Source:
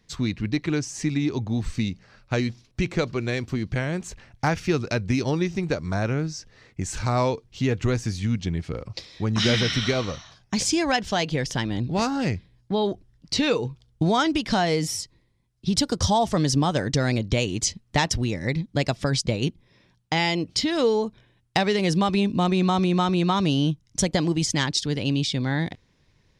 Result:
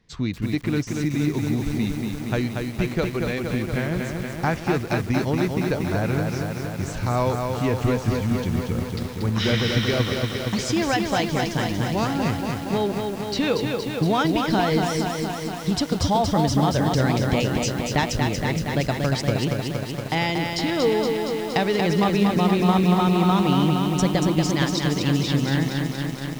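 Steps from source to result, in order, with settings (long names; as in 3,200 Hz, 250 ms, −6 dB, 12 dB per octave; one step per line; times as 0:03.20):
low-pass filter 3,400 Hz 6 dB per octave
feedback echo at a low word length 234 ms, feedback 80%, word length 7 bits, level −4 dB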